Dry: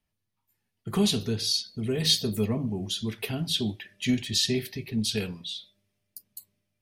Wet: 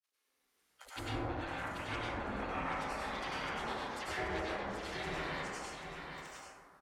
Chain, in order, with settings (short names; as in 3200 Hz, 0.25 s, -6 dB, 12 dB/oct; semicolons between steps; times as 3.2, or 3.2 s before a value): half-wave gain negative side -7 dB; short-mantissa float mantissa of 4-bit; spectral gate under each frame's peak -25 dB weak; bands offset in time highs, lows 40 ms, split 680 Hz; grains 0.121 s, grains 20/s; treble ducked by the level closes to 710 Hz, closed at -43.5 dBFS; on a send: echo 0.784 s -6.5 dB; on the sum: plate-style reverb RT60 2 s, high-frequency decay 0.25×, pre-delay 85 ms, DRR -9 dB; gain +7 dB